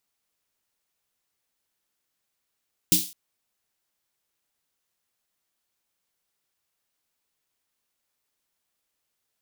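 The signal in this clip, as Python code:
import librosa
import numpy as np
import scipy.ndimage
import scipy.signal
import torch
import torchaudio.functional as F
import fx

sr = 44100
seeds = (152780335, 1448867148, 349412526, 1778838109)

y = fx.drum_snare(sr, seeds[0], length_s=0.21, hz=180.0, second_hz=310.0, noise_db=6, noise_from_hz=3200.0, decay_s=0.23, noise_decay_s=0.38)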